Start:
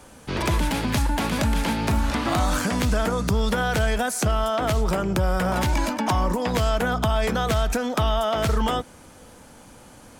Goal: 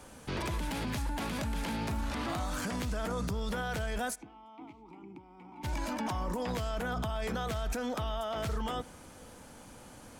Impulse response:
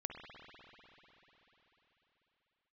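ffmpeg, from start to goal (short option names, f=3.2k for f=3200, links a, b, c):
-filter_complex "[0:a]alimiter=limit=-23dB:level=0:latency=1:release=25,asplit=3[a][b][c];[a]afade=t=out:st=4.14:d=0.02[d];[b]asplit=3[e][f][g];[e]bandpass=f=300:t=q:w=8,volume=0dB[h];[f]bandpass=f=870:t=q:w=8,volume=-6dB[i];[g]bandpass=f=2.24k:t=q:w=8,volume=-9dB[j];[h][i][j]amix=inputs=3:normalize=0,afade=t=in:st=4.14:d=0.02,afade=t=out:st=5.63:d=0.02[k];[c]afade=t=in:st=5.63:d=0.02[l];[d][k][l]amix=inputs=3:normalize=0,asplit=2[m][n];[1:a]atrim=start_sample=2205,afade=t=out:st=0.33:d=0.01,atrim=end_sample=14994[o];[n][o]afir=irnorm=-1:irlink=0,volume=-16.5dB[p];[m][p]amix=inputs=2:normalize=0,volume=-5dB"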